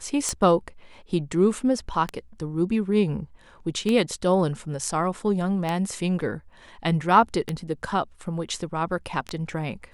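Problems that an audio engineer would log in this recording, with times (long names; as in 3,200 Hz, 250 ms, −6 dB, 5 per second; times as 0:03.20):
scratch tick 33 1/3 rpm −12 dBFS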